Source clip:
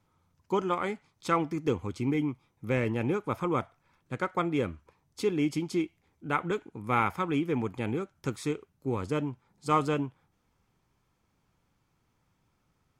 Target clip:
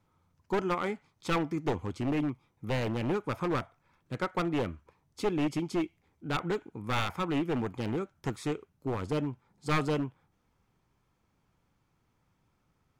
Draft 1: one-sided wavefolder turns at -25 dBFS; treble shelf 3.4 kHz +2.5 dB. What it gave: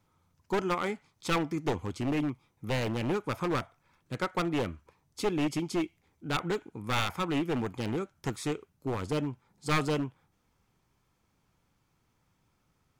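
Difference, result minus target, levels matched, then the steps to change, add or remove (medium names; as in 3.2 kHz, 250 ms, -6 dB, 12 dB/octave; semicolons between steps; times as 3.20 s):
8 kHz band +5.0 dB
change: treble shelf 3.4 kHz -4 dB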